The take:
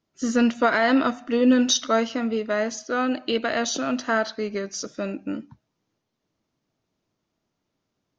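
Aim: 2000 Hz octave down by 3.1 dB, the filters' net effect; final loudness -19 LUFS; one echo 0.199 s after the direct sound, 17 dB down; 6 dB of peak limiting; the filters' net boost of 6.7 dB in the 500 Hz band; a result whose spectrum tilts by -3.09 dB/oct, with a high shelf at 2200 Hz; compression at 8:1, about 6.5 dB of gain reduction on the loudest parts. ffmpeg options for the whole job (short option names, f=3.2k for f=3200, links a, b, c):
-af "equalizer=f=500:t=o:g=8,equalizer=f=2k:t=o:g=-8,highshelf=f=2.2k:g=6,acompressor=threshold=-17dB:ratio=8,alimiter=limit=-15dB:level=0:latency=1,aecho=1:1:199:0.141,volume=5.5dB"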